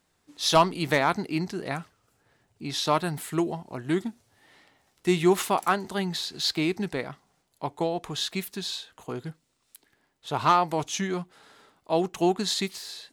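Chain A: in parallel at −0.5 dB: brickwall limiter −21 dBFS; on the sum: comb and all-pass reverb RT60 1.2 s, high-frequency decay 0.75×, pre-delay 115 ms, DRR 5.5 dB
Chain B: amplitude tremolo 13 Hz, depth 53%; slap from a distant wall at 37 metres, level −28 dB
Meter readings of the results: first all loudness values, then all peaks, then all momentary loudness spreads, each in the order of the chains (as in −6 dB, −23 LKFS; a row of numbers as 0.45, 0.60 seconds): −22.5, −29.5 LKFS; −6.0, −11.0 dBFS; 16, 15 LU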